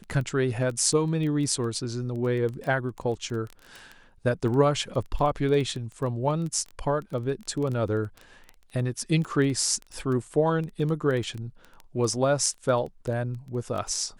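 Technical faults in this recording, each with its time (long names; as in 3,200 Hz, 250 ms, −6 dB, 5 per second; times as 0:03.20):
surface crackle 11 per second −30 dBFS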